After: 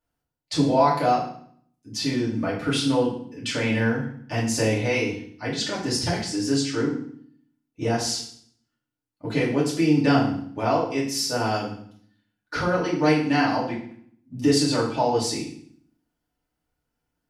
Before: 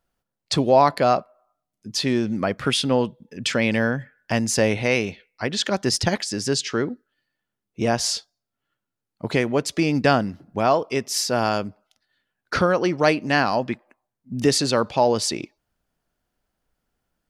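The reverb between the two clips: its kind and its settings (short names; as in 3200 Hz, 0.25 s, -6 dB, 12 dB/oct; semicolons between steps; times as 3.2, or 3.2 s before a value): FDN reverb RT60 0.58 s, low-frequency decay 1.45×, high-frequency decay 0.95×, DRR -7 dB; gain -11 dB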